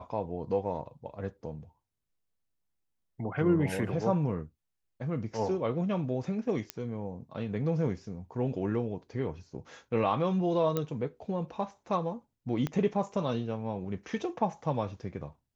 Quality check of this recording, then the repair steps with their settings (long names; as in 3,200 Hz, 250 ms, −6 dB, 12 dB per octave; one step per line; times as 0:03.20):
0:06.70: click −16 dBFS
0:10.77: click −16 dBFS
0:12.67: click −19 dBFS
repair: click removal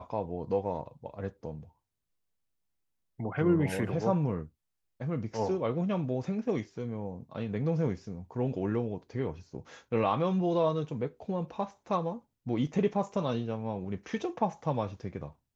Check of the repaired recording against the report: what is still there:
0:06.70: click
0:12.67: click